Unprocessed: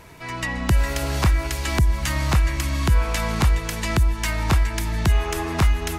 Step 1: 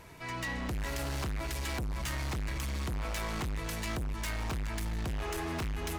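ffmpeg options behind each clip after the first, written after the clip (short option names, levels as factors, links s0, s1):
-af "asoftclip=type=hard:threshold=0.0501,volume=0.473"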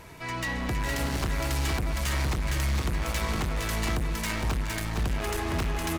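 -af "aecho=1:1:462:0.668,volume=1.78"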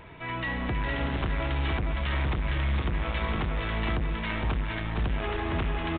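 -af "aresample=8000,aresample=44100"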